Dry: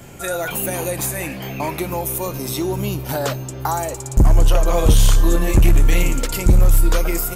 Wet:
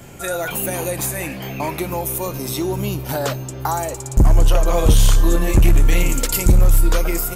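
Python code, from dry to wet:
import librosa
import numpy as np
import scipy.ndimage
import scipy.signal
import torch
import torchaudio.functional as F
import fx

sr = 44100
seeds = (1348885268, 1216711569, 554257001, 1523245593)

y = fx.high_shelf(x, sr, hz=5500.0, db=8.5, at=(6.09, 6.52))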